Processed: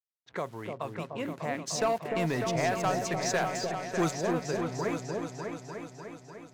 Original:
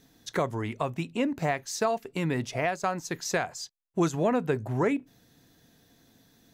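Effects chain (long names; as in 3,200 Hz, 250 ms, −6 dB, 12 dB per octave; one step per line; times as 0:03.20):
hold until the input has moved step −46.5 dBFS
high-pass filter 140 Hz
parametric band 260 Hz −4 dB 1 octave
low-pass that shuts in the quiet parts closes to 970 Hz, open at −28.5 dBFS
0:01.67–0:04.11: leveller curve on the samples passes 2
echo whose low-pass opens from repeat to repeat 299 ms, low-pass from 750 Hz, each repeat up 2 octaves, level −3 dB
level −6 dB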